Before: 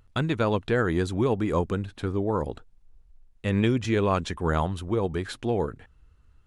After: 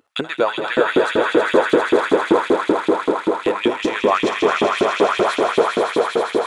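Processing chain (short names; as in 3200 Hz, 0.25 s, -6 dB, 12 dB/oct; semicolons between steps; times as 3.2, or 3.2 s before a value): in parallel at +2.5 dB: level quantiser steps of 14 dB; on the sum: swelling echo 80 ms, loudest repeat 8, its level -6 dB; 1.35–3.54 de-esser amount 60%; LFO high-pass saw up 5.2 Hz 280–3300 Hz; gain -1 dB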